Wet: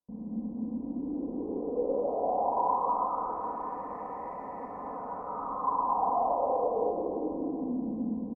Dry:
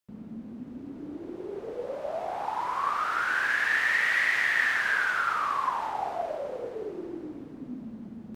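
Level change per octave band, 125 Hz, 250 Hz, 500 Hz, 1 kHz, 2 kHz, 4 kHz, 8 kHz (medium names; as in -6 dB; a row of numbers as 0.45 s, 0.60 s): no reading, +6.0 dB, +4.5 dB, +1.0 dB, under -35 dB, under -40 dB, under -30 dB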